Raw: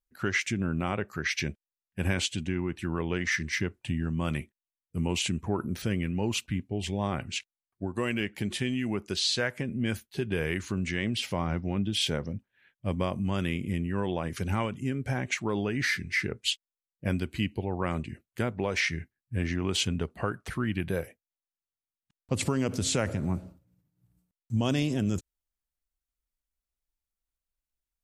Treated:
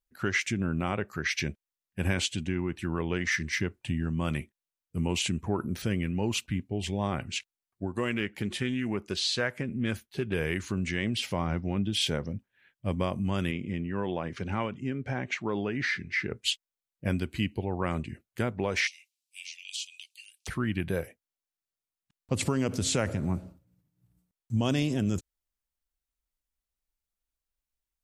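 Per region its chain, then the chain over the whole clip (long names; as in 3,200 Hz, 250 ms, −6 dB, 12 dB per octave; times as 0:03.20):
0:07.98–0:10.34: bass and treble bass −1 dB, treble −3 dB + highs frequency-modulated by the lows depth 0.12 ms
0:13.51–0:16.31: high-pass filter 140 Hz 6 dB per octave + high-frequency loss of the air 130 metres
0:18.87–0:20.47: Butterworth high-pass 2,400 Hz 72 dB per octave + parametric band 5,800 Hz +12.5 dB 2.6 octaves + downward compressor 3 to 1, threshold −39 dBFS
whole clip: no processing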